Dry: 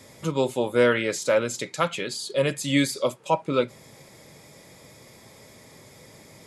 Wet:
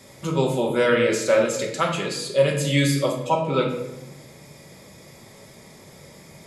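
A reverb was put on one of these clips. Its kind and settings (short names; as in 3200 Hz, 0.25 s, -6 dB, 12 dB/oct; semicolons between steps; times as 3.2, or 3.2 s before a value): shoebox room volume 350 m³, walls mixed, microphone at 1.1 m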